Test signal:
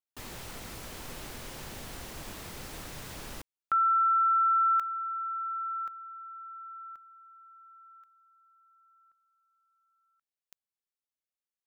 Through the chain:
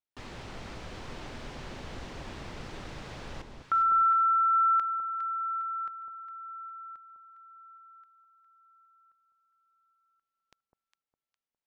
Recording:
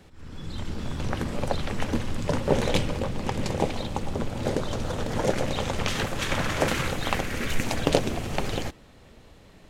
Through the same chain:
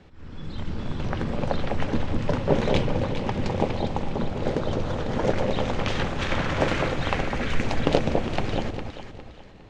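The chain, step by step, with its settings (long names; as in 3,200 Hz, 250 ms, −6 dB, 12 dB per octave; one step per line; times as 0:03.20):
high-frequency loss of the air 130 metres
delay that swaps between a low-pass and a high-pass 204 ms, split 1,000 Hz, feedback 57%, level −4 dB
level +1 dB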